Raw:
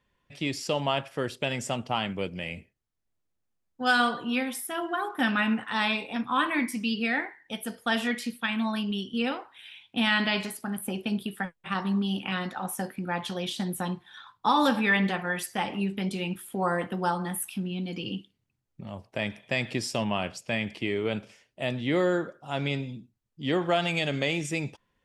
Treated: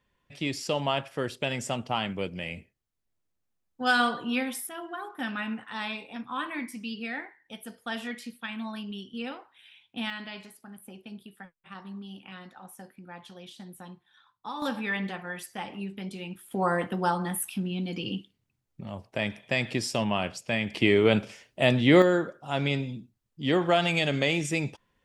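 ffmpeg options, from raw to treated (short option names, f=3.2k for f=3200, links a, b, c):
-af "asetnsamples=n=441:p=0,asendcmd='4.69 volume volume -7.5dB;10.1 volume volume -14dB;14.62 volume volume -7dB;16.51 volume volume 1dB;20.74 volume volume 8dB;22.02 volume volume 2dB',volume=-0.5dB"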